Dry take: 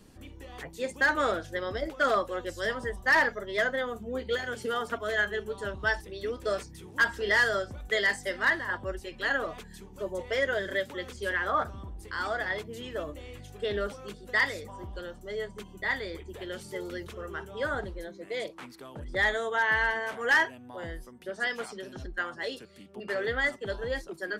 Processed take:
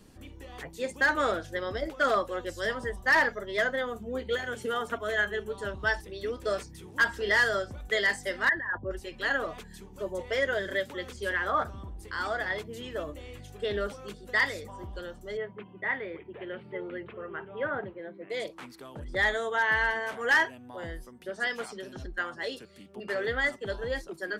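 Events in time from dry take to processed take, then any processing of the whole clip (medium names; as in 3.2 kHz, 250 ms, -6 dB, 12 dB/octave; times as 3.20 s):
4.21–5.54 s: peaking EQ 4.8 kHz -8 dB 0.28 oct
8.49–8.91 s: resonances exaggerated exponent 2
15.37–18.30 s: elliptic band-pass 110–2600 Hz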